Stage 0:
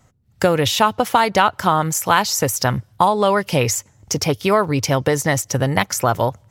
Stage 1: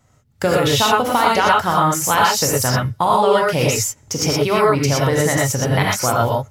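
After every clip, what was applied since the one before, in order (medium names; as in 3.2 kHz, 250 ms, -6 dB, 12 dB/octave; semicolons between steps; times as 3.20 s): gated-style reverb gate 140 ms rising, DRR -3.5 dB; trim -3.5 dB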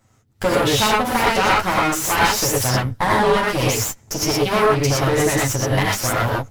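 comb filter that takes the minimum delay 9.2 ms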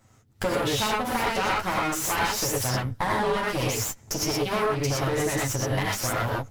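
compression 2:1, threshold -29 dBFS, peak gain reduction 10 dB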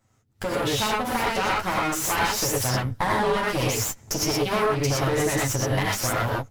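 level rider gain up to 11.5 dB; trim -8 dB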